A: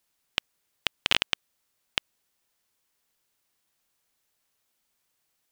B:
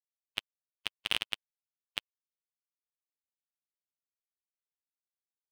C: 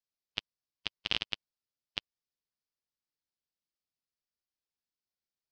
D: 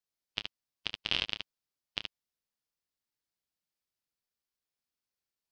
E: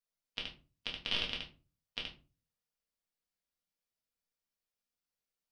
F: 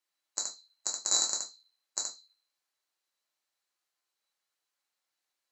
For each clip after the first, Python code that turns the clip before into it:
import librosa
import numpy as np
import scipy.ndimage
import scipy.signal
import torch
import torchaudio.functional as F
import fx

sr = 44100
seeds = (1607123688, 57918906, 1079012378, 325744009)

y1 = fx.bin_expand(x, sr, power=2.0)
y1 = fx.leveller(y1, sr, passes=2)
y1 = y1 * 10.0 ** (-8.5 / 20.0)
y2 = fx.ladder_lowpass(y1, sr, hz=5700.0, resonance_pct=55)
y2 = fx.low_shelf(y2, sr, hz=480.0, db=9.5)
y2 = y2 * 10.0 ** (6.0 / 20.0)
y3 = fx.room_early_taps(y2, sr, ms=(28, 74), db=(-9.5, -5.0))
y4 = fx.room_shoebox(y3, sr, seeds[0], volume_m3=150.0, walls='furnished', distance_m=1.8)
y4 = y4 * 10.0 ** (-6.0 / 20.0)
y5 = fx.band_swap(y4, sr, width_hz=4000)
y5 = fx.weighting(y5, sr, curve='A')
y5 = y5 * 10.0 ** (7.0 / 20.0)